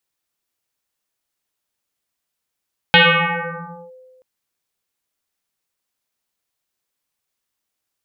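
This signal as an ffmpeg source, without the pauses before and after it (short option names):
-f lavfi -i "aevalsrc='0.531*pow(10,-3*t/1.73)*sin(2*PI*513*t+8.8*clip(1-t/0.97,0,1)*sin(2*PI*0.66*513*t))':d=1.28:s=44100"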